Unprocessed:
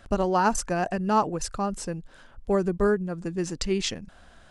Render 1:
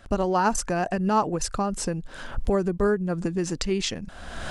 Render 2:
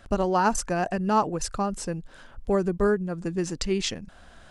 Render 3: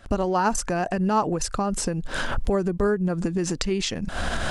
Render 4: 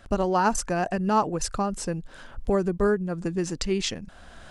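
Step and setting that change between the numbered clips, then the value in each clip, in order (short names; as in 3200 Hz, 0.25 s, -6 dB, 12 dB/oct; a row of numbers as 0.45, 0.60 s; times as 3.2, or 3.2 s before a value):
recorder AGC, rising by: 35, 5.2, 88, 13 dB/s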